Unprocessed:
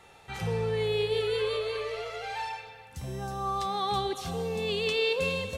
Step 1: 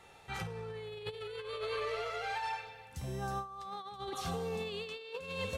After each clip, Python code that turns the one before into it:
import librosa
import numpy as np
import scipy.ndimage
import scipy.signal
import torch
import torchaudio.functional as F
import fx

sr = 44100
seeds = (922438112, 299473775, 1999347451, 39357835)

y = fx.dynamic_eq(x, sr, hz=1300.0, q=1.6, threshold_db=-47.0, ratio=4.0, max_db=6)
y = fx.over_compress(y, sr, threshold_db=-32.0, ratio=-0.5)
y = F.gain(torch.from_numpy(y), -6.5).numpy()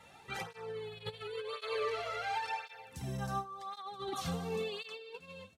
y = fx.fade_out_tail(x, sr, length_s=0.82)
y = fx.flanger_cancel(y, sr, hz=0.93, depth_ms=2.8)
y = F.gain(torch.from_numpy(y), 3.5).numpy()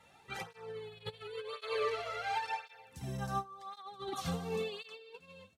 y = fx.upward_expand(x, sr, threshold_db=-46.0, expansion=1.5)
y = F.gain(torch.from_numpy(y), 2.0).numpy()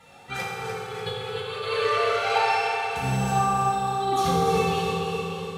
y = fx.echo_feedback(x, sr, ms=296, feedback_pct=58, wet_db=-6.0)
y = fx.rev_fdn(y, sr, rt60_s=3.4, lf_ratio=1.0, hf_ratio=0.6, size_ms=12.0, drr_db=-5.0)
y = F.gain(torch.from_numpy(y), 8.0).numpy()